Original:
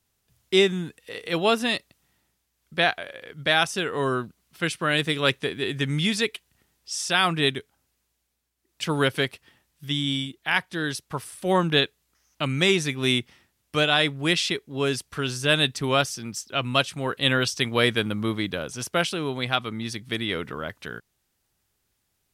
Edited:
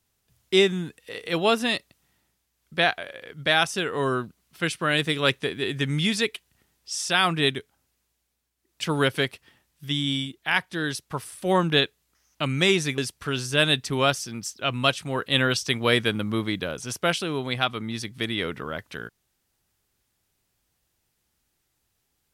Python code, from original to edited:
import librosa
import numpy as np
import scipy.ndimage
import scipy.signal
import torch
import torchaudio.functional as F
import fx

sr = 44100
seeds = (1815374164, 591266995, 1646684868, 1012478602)

y = fx.edit(x, sr, fx.cut(start_s=12.98, length_s=1.91), tone=tone)